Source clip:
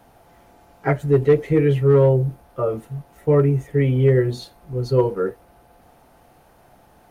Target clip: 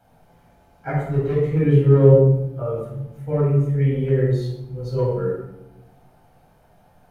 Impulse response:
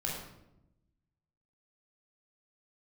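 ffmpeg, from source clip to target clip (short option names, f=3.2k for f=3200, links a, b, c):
-filter_complex "[0:a]asettb=1/sr,asplit=3[a][b][c];[a]atrim=end=1.634[d];[b]atrim=start=1.63:end=2.1,asetpts=PTS-STARTPTS,afade=t=in:d=0.004:c=qsin,afade=t=out:st=0.466:d=0.004:c=qsin,equalizer=f=270:w=0.74:g=9[e];[c]atrim=start=2.096[f];[d][e]acrossfade=d=0.004:c1=hsin:c2=qsin[g];[g][f]acrossfade=d=0.004:c1=qsin:c2=hsin[h];[1:a]atrim=start_sample=2205[i];[h][i]afir=irnorm=-1:irlink=0,volume=-8.5dB"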